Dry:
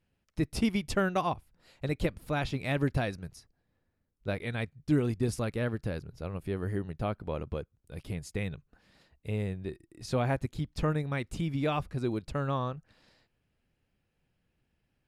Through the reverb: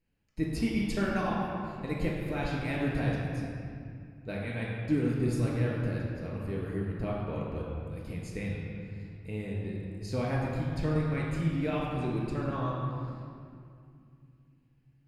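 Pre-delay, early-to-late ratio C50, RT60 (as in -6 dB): 3 ms, -0.5 dB, 2.4 s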